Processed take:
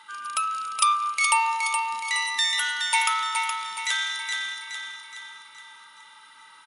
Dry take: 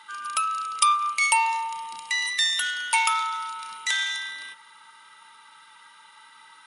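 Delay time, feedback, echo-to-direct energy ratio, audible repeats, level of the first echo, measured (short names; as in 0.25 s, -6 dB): 0.42 s, 50%, -4.5 dB, 5, -5.5 dB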